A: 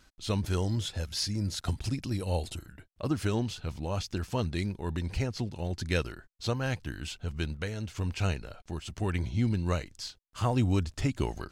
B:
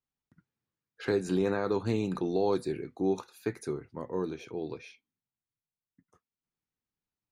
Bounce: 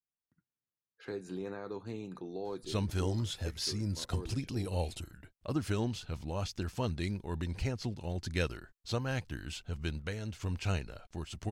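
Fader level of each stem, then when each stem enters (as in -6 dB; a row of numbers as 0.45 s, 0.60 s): -3.5 dB, -12.0 dB; 2.45 s, 0.00 s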